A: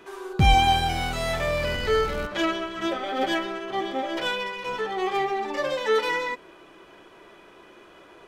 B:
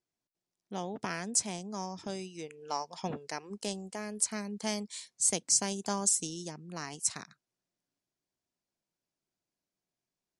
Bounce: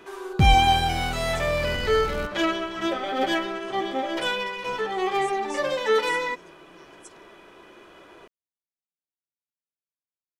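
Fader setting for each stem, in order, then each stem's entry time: +1.0 dB, -18.5 dB; 0.00 s, 0.00 s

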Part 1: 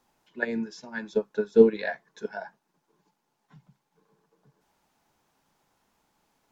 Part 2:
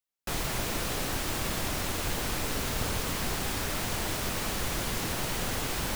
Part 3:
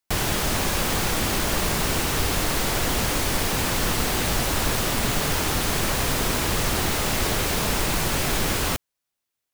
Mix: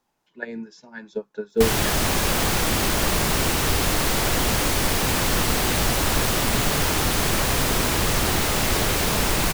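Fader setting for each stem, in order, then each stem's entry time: -3.5 dB, -19.5 dB, +2.0 dB; 0.00 s, 1.30 s, 1.50 s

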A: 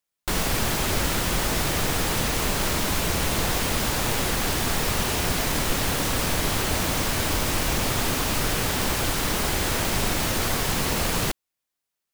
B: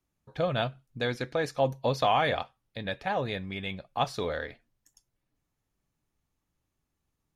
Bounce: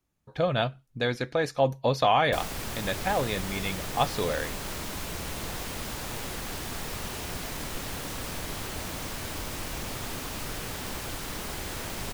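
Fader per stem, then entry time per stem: -11.0 dB, +2.5 dB; 2.05 s, 0.00 s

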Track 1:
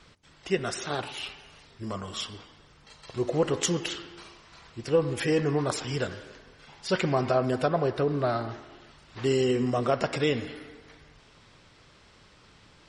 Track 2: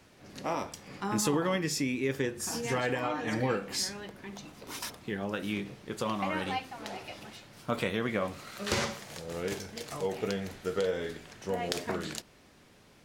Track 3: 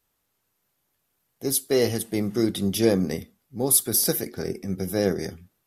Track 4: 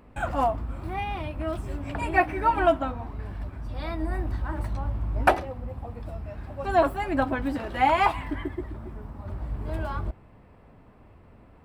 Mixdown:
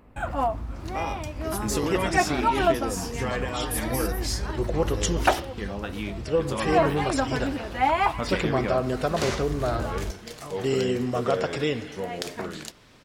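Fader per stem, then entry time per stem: -0.5 dB, +0.5 dB, -13.0 dB, -1.0 dB; 1.40 s, 0.50 s, 0.00 s, 0.00 s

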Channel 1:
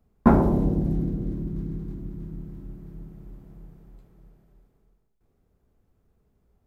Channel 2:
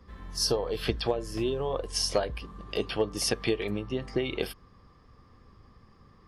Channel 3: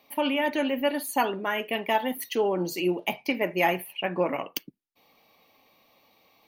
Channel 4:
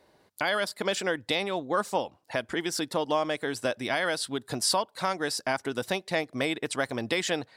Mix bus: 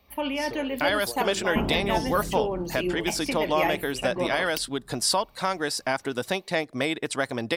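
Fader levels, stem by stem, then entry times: -10.5 dB, -11.5 dB, -3.0 dB, +2.0 dB; 1.30 s, 0.00 s, 0.00 s, 0.40 s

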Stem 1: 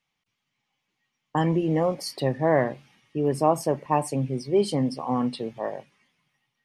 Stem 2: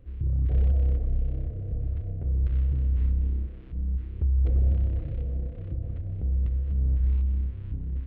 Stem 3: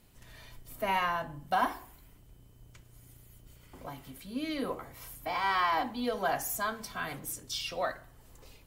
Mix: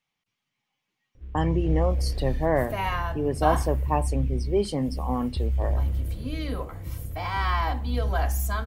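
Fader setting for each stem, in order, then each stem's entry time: -2.5 dB, -2.5 dB, +0.5 dB; 0.00 s, 1.15 s, 1.90 s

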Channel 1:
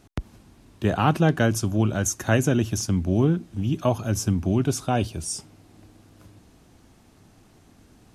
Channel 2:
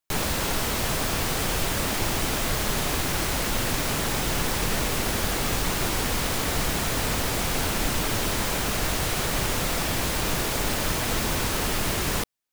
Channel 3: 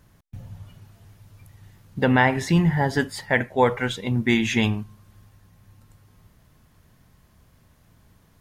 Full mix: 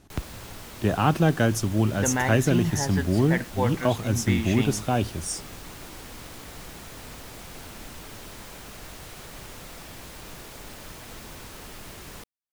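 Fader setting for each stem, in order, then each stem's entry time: -1.0 dB, -16.0 dB, -8.0 dB; 0.00 s, 0.00 s, 0.00 s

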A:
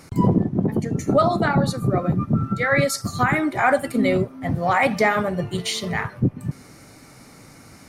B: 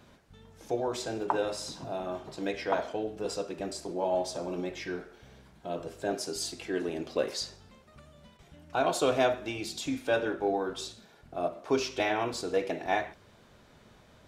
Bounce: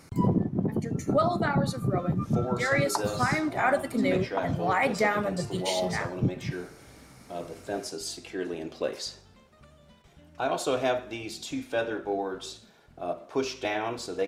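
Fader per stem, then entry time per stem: -6.5 dB, -1.0 dB; 0.00 s, 1.65 s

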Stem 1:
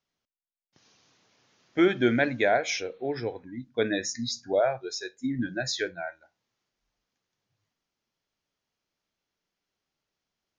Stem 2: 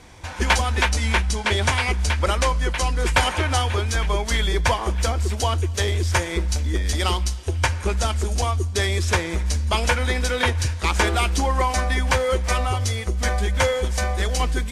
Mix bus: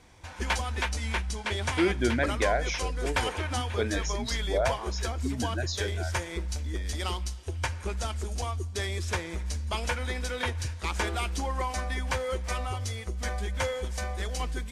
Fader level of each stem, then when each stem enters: -4.0 dB, -10.0 dB; 0.00 s, 0.00 s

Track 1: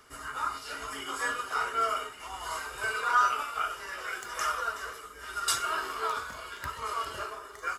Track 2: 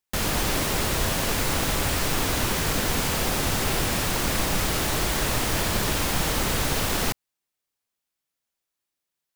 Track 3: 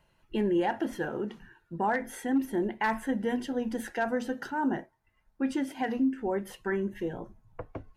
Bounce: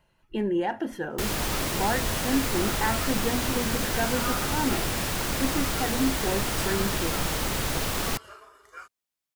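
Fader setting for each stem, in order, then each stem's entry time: -10.0 dB, -3.5 dB, +0.5 dB; 1.10 s, 1.05 s, 0.00 s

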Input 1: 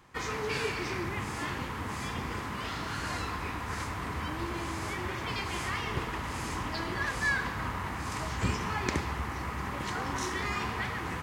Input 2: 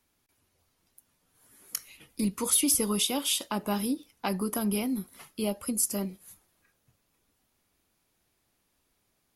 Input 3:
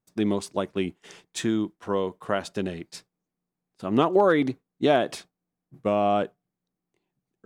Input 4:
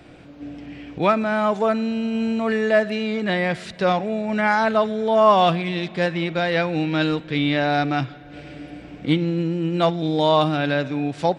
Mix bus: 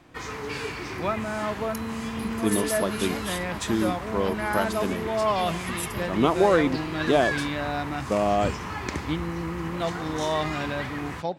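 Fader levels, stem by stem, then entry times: -0.5 dB, -8.0 dB, -0.5 dB, -9.5 dB; 0.00 s, 0.00 s, 2.25 s, 0.00 s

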